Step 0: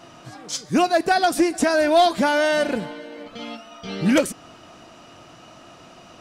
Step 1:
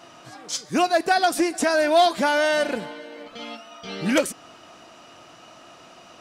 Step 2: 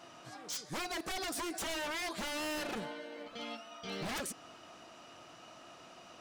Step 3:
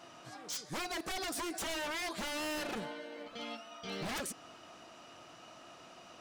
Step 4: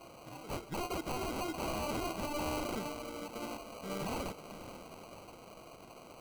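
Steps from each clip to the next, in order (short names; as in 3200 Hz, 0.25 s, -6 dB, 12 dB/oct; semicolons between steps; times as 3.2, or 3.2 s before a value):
low shelf 240 Hz -10 dB
compressor 6:1, threshold -20 dBFS, peak gain reduction 7.5 dB; wavefolder -26 dBFS; gain -7 dB
nothing audible
diffused feedback echo 0.507 s, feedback 48%, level -12 dB; sample-and-hold 25×; gain +1 dB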